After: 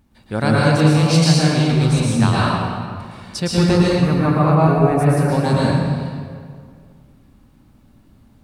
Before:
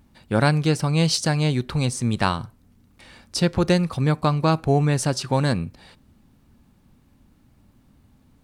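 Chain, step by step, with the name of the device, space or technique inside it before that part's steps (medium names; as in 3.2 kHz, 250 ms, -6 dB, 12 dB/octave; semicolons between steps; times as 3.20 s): 3.90–5.28 s: high-order bell 4.9 kHz -14 dB; stairwell (reverberation RT60 2.1 s, pre-delay 106 ms, DRR -7 dB); trim -2.5 dB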